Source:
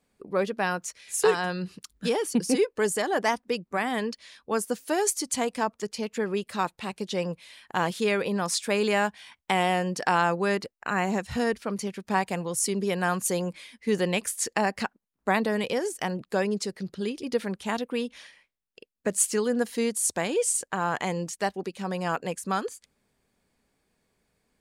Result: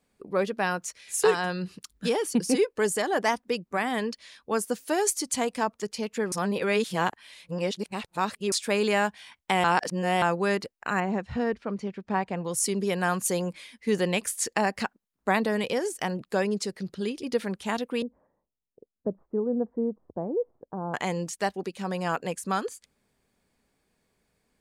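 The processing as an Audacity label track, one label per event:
6.320000	8.520000	reverse
9.640000	10.220000	reverse
11.000000	12.450000	tape spacing loss at 10 kHz 25 dB
18.020000	20.940000	Bessel low-pass 570 Hz, order 6

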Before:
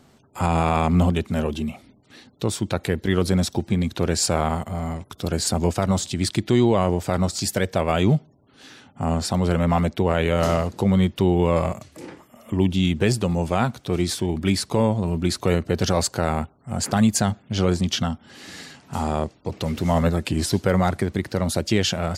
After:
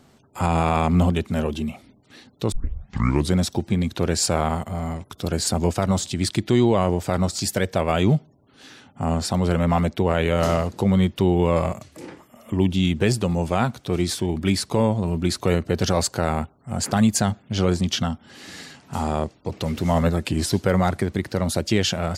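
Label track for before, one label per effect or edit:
2.520000	2.520000	tape start 0.83 s

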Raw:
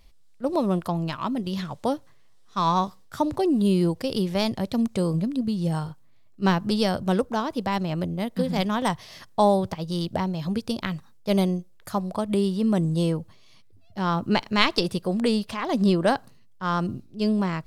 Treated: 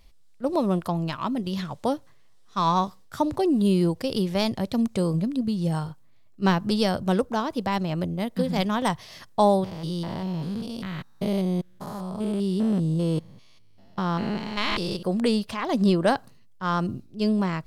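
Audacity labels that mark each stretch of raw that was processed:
9.640000	15.030000	spectrogram pixelated in time every 200 ms

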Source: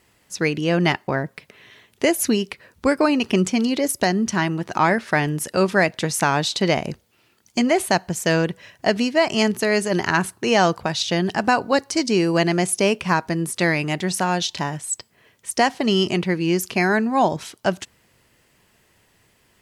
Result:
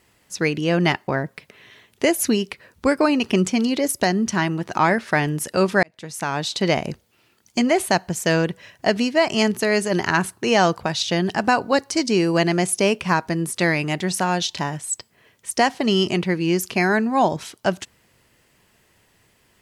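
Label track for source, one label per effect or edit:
5.830000	6.720000	fade in

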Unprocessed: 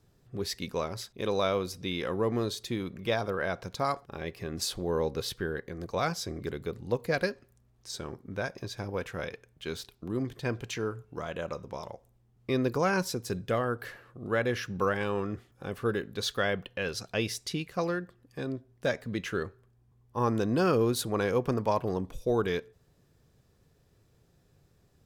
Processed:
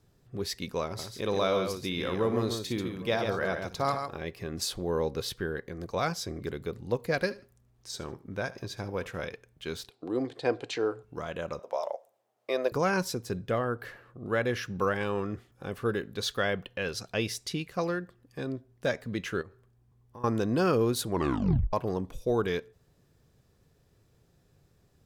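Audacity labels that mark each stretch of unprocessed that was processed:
0.850000	4.180000	multi-tap echo 58/138/802 ms -11.5/-6/-19 dB
7.140000	9.270000	feedback delay 76 ms, feedback 24%, level -18.5 dB
9.900000	11.030000	cabinet simulation 190–8800 Hz, peaks and dips at 200 Hz -9 dB, 300 Hz +6 dB, 490 Hz +8 dB, 750 Hz +10 dB, 4.1 kHz +6 dB, 6.1 kHz -5 dB
11.590000	12.720000	resonant high-pass 610 Hz, resonance Q 4.2
13.220000	14.280000	peaking EQ 11 kHz -5 dB 2.7 oct
19.410000	20.240000	compression, threshold -43 dBFS
21.080000	21.080000	tape stop 0.65 s

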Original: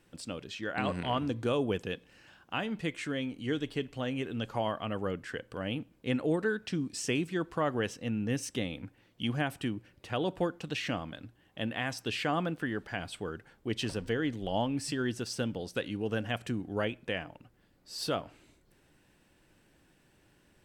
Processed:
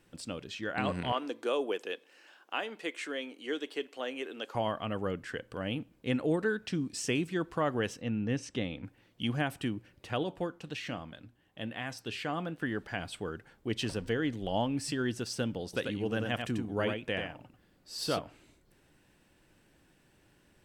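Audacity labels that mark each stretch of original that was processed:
1.120000	4.550000	high-pass 330 Hz 24 dB/octave
8.010000	8.840000	distance through air 89 m
10.230000	12.620000	flange 1.2 Hz, delay 4.6 ms, depth 2.5 ms, regen -85%
15.640000	18.190000	delay 90 ms -5 dB

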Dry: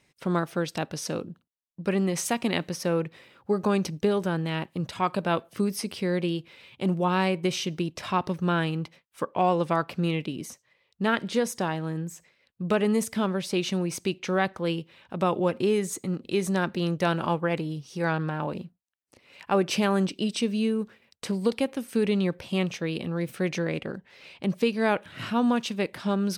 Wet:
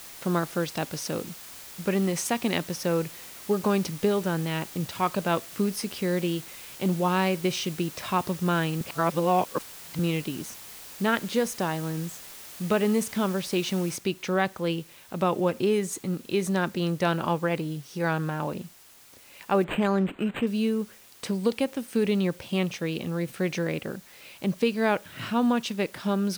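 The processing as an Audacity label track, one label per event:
8.810000	9.990000	reverse
13.960000	13.960000	noise floor step -44 dB -53 dB
19.640000	20.470000	decimation joined by straight lines rate divided by 8×

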